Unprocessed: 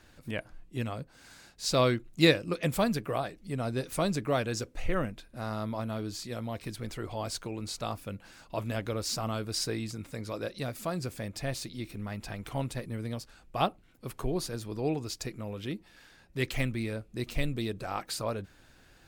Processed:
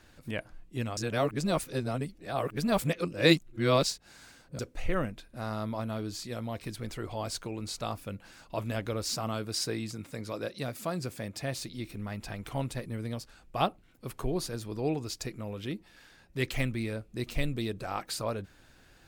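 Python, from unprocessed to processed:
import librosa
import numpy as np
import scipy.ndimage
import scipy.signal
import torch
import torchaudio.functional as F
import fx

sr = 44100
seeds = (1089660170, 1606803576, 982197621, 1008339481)

y = fx.highpass(x, sr, hz=90.0, slope=12, at=(9.14, 11.59))
y = fx.edit(y, sr, fx.reverse_span(start_s=0.97, length_s=3.62), tone=tone)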